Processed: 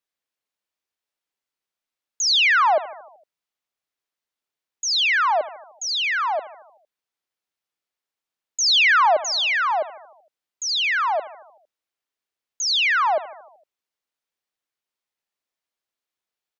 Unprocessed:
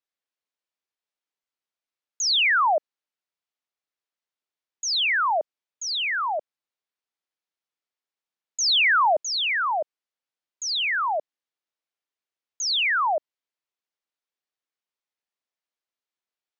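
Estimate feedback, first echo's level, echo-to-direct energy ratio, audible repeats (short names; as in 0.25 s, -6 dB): 60%, -16.0 dB, -14.0 dB, 5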